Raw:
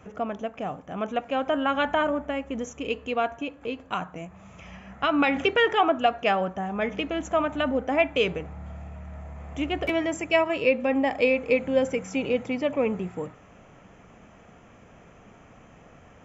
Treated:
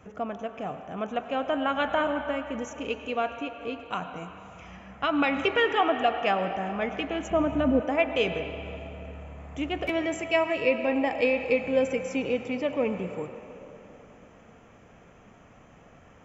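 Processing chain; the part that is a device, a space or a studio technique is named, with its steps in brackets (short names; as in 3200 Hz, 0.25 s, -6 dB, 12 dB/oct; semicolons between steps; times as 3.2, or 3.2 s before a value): 7.3–7.8 tilt shelf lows +9.5 dB, about 760 Hz; filtered reverb send (on a send: HPF 530 Hz 6 dB/oct + LPF 4300 Hz 12 dB/oct + reverb RT60 3.2 s, pre-delay 91 ms, DRR 7.5 dB); on the sum: gain -2.5 dB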